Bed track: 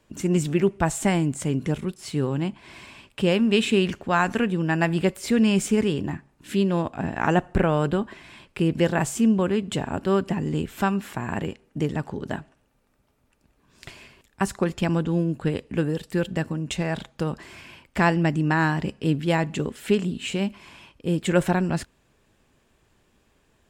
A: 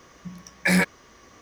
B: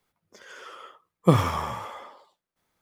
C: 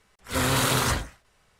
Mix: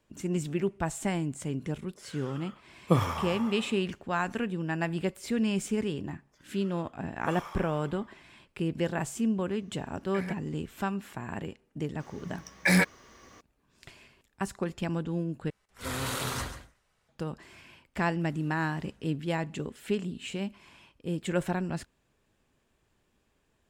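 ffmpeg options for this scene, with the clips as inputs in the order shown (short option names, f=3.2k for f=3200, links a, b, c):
-filter_complex "[2:a]asplit=2[a][b];[1:a]asplit=2[c][d];[3:a]asplit=2[e][f];[0:a]volume=-8.5dB[g];[b]highpass=650[h];[c]acrossover=split=2600[i][j];[j]acompressor=threshold=-39dB:ratio=4:attack=1:release=60[k];[i][k]amix=inputs=2:normalize=0[l];[e]aecho=1:1:139:0.266[m];[f]acompressor=threshold=-45dB:ratio=6:attack=3.2:release=140:knee=1:detection=peak[n];[g]asplit=2[o][p];[o]atrim=end=15.504[q];[m]atrim=end=1.59,asetpts=PTS-STARTPTS,volume=-10dB[r];[p]atrim=start=17.086[s];[a]atrim=end=2.81,asetpts=PTS-STARTPTS,volume=-5.5dB,afade=t=in:d=0.004:c=hsin,afade=t=out:st=2.806:d=0.004:c=hsin,adelay=1630[t];[h]atrim=end=2.81,asetpts=PTS-STARTPTS,volume=-14dB,afade=t=in:d=0.004:c=hsin,afade=t=out:st=2.806:d=0.004:c=hsin,adelay=5990[u];[l]atrim=end=1.41,asetpts=PTS-STARTPTS,volume=-18dB,afade=t=in:d=0.004:c=hsin,afade=t=out:st=1.406:d=0.004:c=hsin,adelay=9490[v];[d]atrim=end=1.41,asetpts=PTS-STARTPTS,volume=-2.5dB,afade=t=in:d=0.004:c=hsin,afade=t=out:st=1.406:d=0.004:c=hsin,adelay=12000[w];[n]atrim=end=1.59,asetpts=PTS-STARTPTS,volume=-16dB,afade=t=in:d=0.004:c=hsin,afade=t=out:st=1.586:d=0.004:c=hsin,adelay=17950[x];[q][r]acrossfade=d=0.004:c1=hsin:c2=hsin[y];[y][s]acrossfade=d=0.004:c1=hsin:c2=hsin[z];[z][t][u][v][w][x]amix=inputs=6:normalize=0"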